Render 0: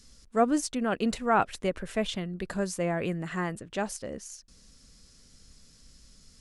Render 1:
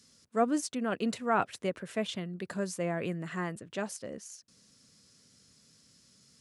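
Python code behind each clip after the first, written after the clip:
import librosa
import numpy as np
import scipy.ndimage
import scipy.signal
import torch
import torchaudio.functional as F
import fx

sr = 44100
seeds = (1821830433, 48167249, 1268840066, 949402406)

y = scipy.signal.sosfilt(scipy.signal.butter(4, 100.0, 'highpass', fs=sr, output='sos'), x)
y = fx.notch(y, sr, hz=810.0, q=15.0)
y = F.gain(torch.from_numpy(y), -3.5).numpy()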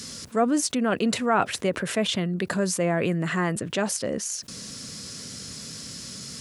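y = fx.env_flatten(x, sr, amount_pct=50)
y = F.gain(torch.from_numpy(y), 4.0).numpy()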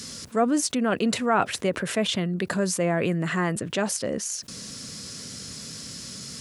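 y = x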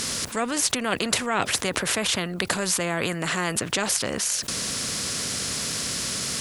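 y = fx.spectral_comp(x, sr, ratio=2.0)
y = F.gain(torch.from_numpy(y), 3.5).numpy()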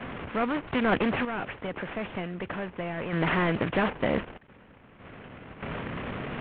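y = fx.cvsd(x, sr, bps=16000)
y = fx.tremolo_random(y, sr, seeds[0], hz=1.6, depth_pct=90)
y = fx.doppler_dist(y, sr, depth_ms=0.17)
y = F.gain(torch.from_numpy(y), 4.0).numpy()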